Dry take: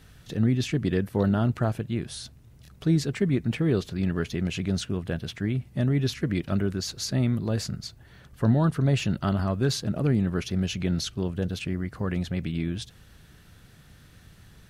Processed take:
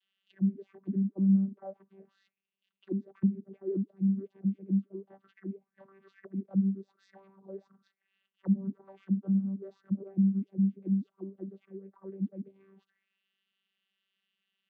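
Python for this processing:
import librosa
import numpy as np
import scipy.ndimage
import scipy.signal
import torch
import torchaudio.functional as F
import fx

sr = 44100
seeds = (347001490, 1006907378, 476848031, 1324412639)

y = fx.vocoder(x, sr, bands=16, carrier='saw', carrier_hz=194.0)
y = fx.auto_wah(y, sr, base_hz=210.0, top_hz=3100.0, q=6.3, full_db=-21.5, direction='down')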